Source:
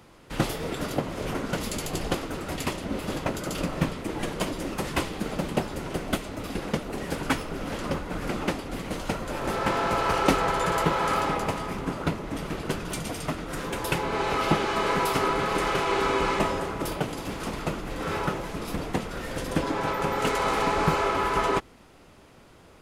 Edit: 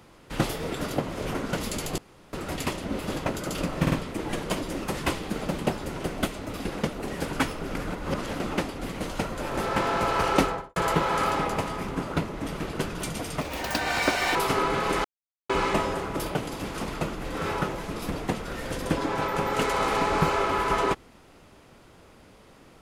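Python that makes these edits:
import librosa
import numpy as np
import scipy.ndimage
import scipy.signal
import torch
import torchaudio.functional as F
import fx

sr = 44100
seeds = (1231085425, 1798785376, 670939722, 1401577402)

y = fx.studio_fade_out(x, sr, start_s=10.27, length_s=0.39)
y = fx.edit(y, sr, fx.room_tone_fill(start_s=1.98, length_s=0.35),
    fx.stutter(start_s=3.82, slice_s=0.05, count=3),
    fx.reverse_span(start_s=7.65, length_s=0.65),
    fx.speed_span(start_s=13.31, length_s=1.7, speed=1.8),
    fx.silence(start_s=15.7, length_s=0.45), tone=tone)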